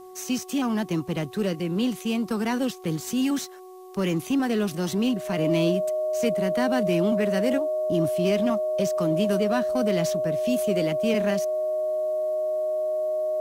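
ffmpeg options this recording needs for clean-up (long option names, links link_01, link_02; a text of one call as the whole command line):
ffmpeg -i in.wav -af "bandreject=frequency=370.1:width_type=h:width=4,bandreject=frequency=740.2:width_type=h:width=4,bandreject=frequency=1110.3:width_type=h:width=4,bandreject=frequency=620:width=30,agate=range=-21dB:threshold=-29dB" out.wav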